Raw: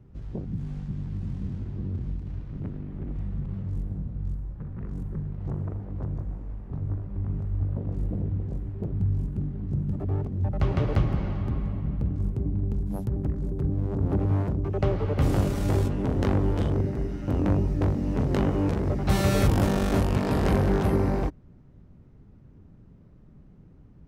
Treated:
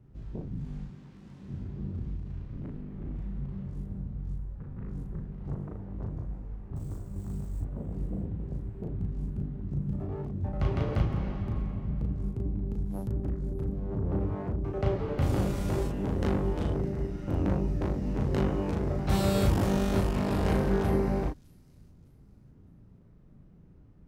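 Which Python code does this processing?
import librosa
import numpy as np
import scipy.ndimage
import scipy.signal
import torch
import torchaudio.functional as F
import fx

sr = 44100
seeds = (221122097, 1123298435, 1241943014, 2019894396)

y = fx.highpass(x, sr, hz=530.0, slope=6, at=(0.86, 1.49))
y = fx.sample_hold(y, sr, seeds[0], rate_hz=8100.0, jitter_pct=20, at=(6.76, 7.61))
y = fx.high_shelf(y, sr, hz=3700.0, db=-10.5, at=(13.79, 14.58))
y = fx.doubler(y, sr, ms=36.0, db=-2.5)
y = fx.echo_wet_highpass(y, sr, ms=608, feedback_pct=31, hz=5400.0, wet_db=-16.5)
y = y * 10.0 ** (-5.5 / 20.0)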